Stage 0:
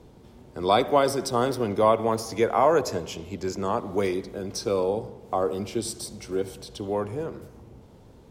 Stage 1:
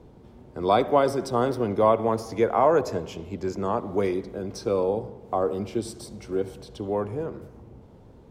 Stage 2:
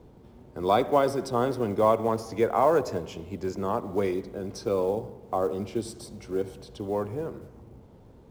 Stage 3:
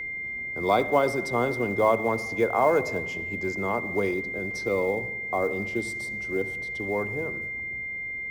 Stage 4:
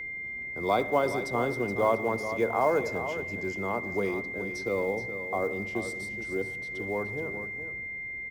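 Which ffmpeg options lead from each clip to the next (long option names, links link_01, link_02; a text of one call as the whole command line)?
ffmpeg -i in.wav -af "highshelf=frequency=2600:gain=-10,volume=1dB" out.wav
ffmpeg -i in.wav -af "acrusher=bits=8:mode=log:mix=0:aa=0.000001,volume=-2dB" out.wav
ffmpeg -i in.wav -af "bandreject=frequency=53.8:width_type=h:width=4,bandreject=frequency=107.6:width_type=h:width=4,bandreject=frequency=161.4:width_type=h:width=4,bandreject=frequency=215.2:width_type=h:width=4,bandreject=frequency=269:width_type=h:width=4,aeval=exprs='val(0)+0.0282*sin(2*PI*2100*n/s)':channel_layout=same" out.wav
ffmpeg -i in.wav -af "aecho=1:1:423:0.299,volume=-3.5dB" out.wav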